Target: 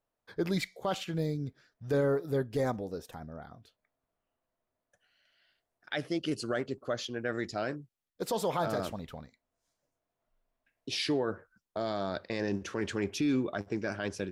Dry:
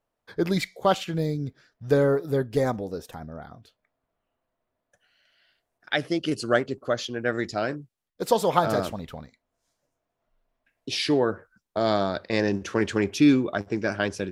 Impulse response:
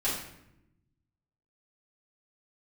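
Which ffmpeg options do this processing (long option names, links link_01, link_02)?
-af "alimiter=limit=-16dB:level=0:latency=1:release=19,volume=-5.5dB"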